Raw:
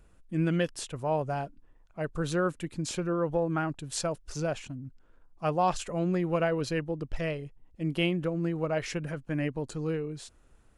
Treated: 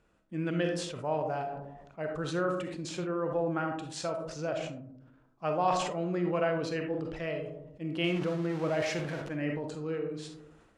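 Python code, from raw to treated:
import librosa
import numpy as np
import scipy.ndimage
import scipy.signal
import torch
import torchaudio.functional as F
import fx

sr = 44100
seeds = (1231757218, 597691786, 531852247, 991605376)

y = fx.zero_step(x, sr, step_db=-34.0, at=(8.04, 9.29))
y = fx.highpass(y, sr, hz=220.0, slope=6)
y = fx.air_absorb(y, sr, metres=77.0)
y = fx.rev_freeverb(y, sr, rt60_s=0.7, hf_ratio=0.3, predelay_ms=5, drr_db=5.0)
y = fx.sustainer(y, sr, db_per_s=47.0)
y = y * 10.0 ** (-2.5 / 20.0)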